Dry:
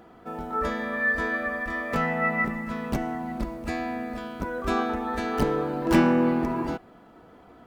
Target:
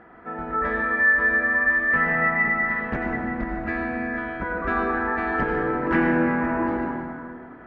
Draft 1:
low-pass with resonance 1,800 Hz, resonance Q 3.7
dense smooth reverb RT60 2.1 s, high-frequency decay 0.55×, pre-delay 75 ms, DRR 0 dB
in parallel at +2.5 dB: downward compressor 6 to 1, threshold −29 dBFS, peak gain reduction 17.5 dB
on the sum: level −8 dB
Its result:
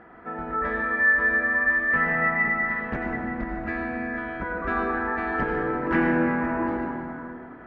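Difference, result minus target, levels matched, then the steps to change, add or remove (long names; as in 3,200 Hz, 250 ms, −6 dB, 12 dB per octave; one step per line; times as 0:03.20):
downward compressor: peak gain reduction +6 dB
change: downward compressor 6 to 1, threshold −22 dBFS, peak gain reduction 11.5 dB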